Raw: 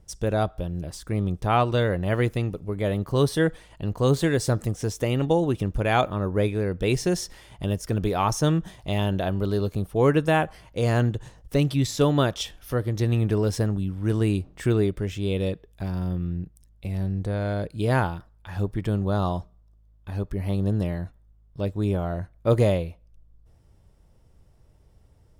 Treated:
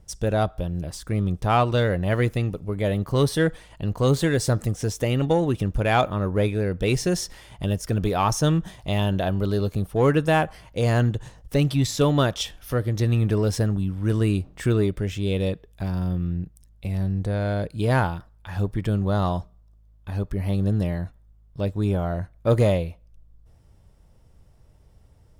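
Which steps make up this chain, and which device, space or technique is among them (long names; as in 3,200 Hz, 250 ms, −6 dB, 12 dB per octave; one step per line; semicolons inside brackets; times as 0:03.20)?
parallel distortion (in parallel at −9.5 dB: hard clipping −20.5 dBFS, distortion −10 dB)
on the sum: parametric band 360 Hz −2.5 dB 0.68 octaves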